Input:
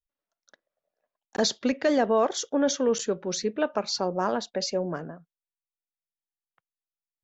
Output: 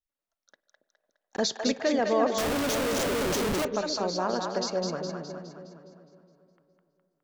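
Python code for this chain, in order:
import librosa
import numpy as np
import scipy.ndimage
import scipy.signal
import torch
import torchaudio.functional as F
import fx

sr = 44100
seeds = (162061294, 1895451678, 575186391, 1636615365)

y = fx.echo_split(x, sr, split_hz=560.0, low_ms=278, high_ms=207, feedback_pct=52, wet_db=-4)
y = fx.schmitt(y, sr, flips_db=-31.5, at=(2.38, 3.65))
y = fx.rev_spring(y, sr, rt60_s=3.3, pass_ms=(48, 58), chirp_ms=70, drr_db=19.0)
y = y * librosa.db_to_amplitude(-3.0)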